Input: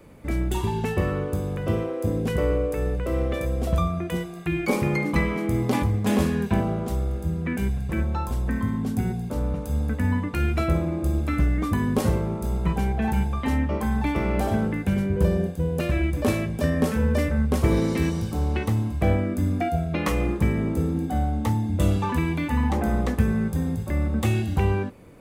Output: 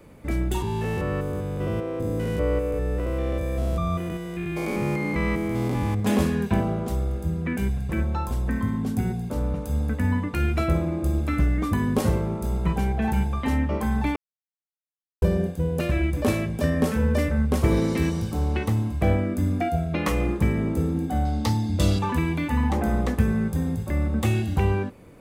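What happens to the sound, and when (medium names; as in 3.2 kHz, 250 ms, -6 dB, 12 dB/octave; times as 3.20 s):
0.62–6.00 s: spectrogram pixelated in time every 200 ms
14.16–15.22 s: mute
21.25–21.99 s: peaking EQ 4.7 kHz +14.5 dB 0.85 oct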